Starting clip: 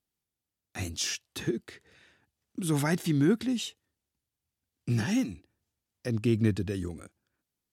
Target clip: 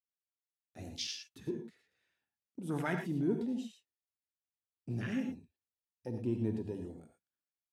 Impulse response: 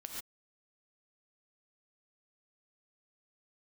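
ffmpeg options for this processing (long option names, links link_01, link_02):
-filter_complex "[0:a]afwtdn=0.0178,lowshelf=frequency=260:gain=-8.5[link_01];[1:a]atrim=start_sample=2205,afade=type=out:start_time=0.14:duration=0.01,atrim=end_sample=6615,asetrate=33957,aresample=44100[link_02];[link_01][link_02]afir=irnorm=-1:irlink=0"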